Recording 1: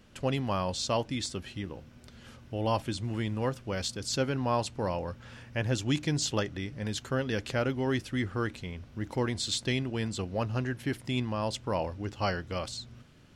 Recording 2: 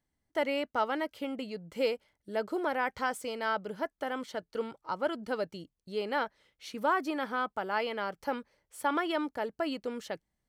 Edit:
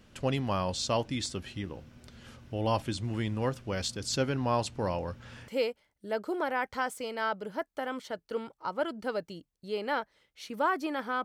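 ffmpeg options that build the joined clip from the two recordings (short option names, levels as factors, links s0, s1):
-filter_complex "[0:a]apad=whole_dur=11.24,atrim=end=11.24,atrim=end=5.482[s0];[1:a]atrim=start=1.718:end=7.48[s1];[s0][s1]acrossfade=d=0.004:c1=hsin:c2=hsin"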